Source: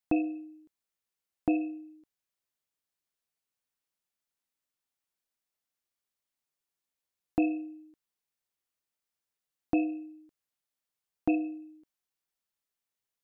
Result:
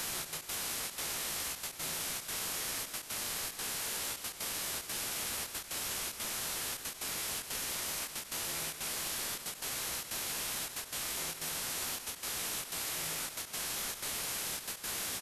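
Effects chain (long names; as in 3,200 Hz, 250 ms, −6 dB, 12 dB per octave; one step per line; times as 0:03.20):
stylus tracing distortion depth 0.06 ms
high-pass filter 790 Hz 12 dB per octave
reversed playback
downward compressor 12 to 1, threshold −50 dBFS, peak gain reduction 17.5 dB
reversed playback
speed change −13%
bit-depth reduction 6 bits, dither triangular
phase-vocoder pitch shift with formants kept −9 semitones
gate pattern "xxx.x.xxxxx.xxxx" 184 BPM −12 dB
single-tap delay 158 ms −11.5 dB
on a send at −17 dB: convolution reverb RT60 4.3 s, pre-delay 55 ms
on the sum: every ending faded ahead of time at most 170 dB per second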